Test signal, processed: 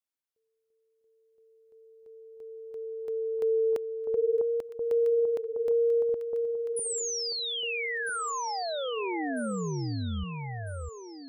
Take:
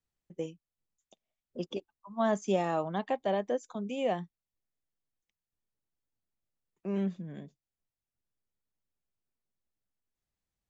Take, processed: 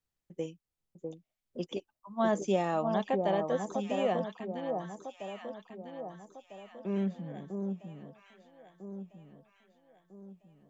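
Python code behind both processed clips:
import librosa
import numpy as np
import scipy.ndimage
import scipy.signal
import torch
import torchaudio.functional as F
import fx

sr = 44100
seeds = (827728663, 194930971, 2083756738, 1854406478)

y = fx.echo_alternate(x, sr, ms=650, hz=1100.0, feedback_pct=65, wet_db=-4.0)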